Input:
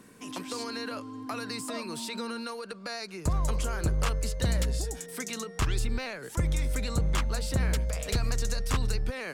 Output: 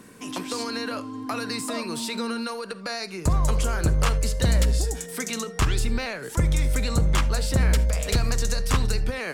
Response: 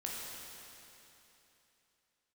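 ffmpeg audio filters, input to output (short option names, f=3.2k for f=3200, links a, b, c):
-filter_complex "[0:a]asplit=2[a][b];[1:a]atrim=start_sample=2205,atrim=end_sample=3969[c];[b][c]afir=irnorm=-1:irlink=0,volume=-7dB[d];[a][d]amix=inputs=2:normalize=0,volume=3.5dB"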